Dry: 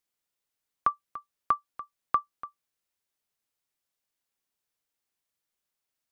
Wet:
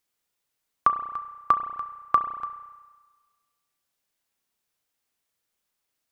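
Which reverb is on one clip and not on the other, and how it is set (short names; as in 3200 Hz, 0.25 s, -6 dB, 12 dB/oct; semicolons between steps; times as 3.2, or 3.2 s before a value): spring tank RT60 1.4 s, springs 32 ms, chirp 65 ms, DRR 8.5 dB; gain +5 dB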